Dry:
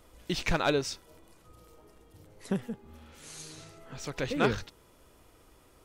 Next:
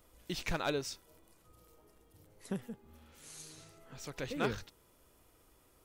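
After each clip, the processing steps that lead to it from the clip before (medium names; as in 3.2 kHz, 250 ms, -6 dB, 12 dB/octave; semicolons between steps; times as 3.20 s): treble shelf 11 kHz +11.5 dB; trim -7.5 dB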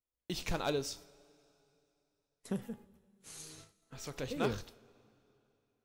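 gate -54 dBFS, range -35 dB; dynamic bell 1.8 kHz, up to -6 dB, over -53 dBFS, Q 1.2; two-slope reverb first 0.4 s, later 3 s, from -19 dB, DRR 12 dB; trim +1 dB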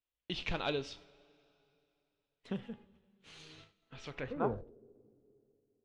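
low-pass sweep 3.1 kHz -> 410 Hz, 4.10–4.70 s; trim -2 dB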